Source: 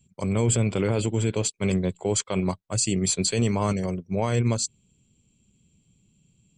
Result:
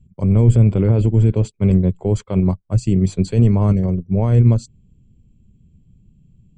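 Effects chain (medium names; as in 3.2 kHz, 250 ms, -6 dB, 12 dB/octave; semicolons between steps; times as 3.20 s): tilt EQ -4.5 dB/octave; trim -1.5 dB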